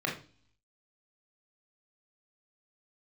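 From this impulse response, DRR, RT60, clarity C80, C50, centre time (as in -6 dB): -1.5 dB, 0.40 s, 13.5 dB, 7.5 dB, 26 ms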